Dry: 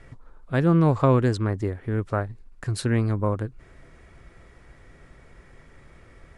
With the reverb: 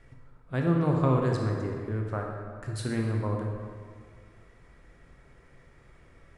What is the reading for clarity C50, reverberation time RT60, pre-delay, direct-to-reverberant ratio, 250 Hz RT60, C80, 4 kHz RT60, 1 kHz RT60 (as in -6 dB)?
2.0 dB, 1.9 s, 19 ms, 0.5 dB, 1.9 s, 3.5 dB, 1.3 s, 1.9 s